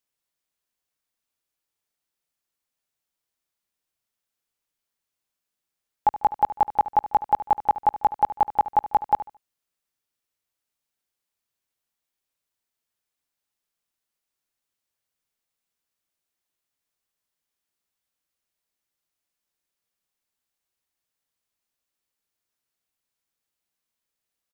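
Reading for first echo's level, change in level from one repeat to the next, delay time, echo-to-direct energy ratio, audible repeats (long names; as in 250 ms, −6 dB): −14.0 dB, −11.5 dB, 73 ms, −13.5 dB, 2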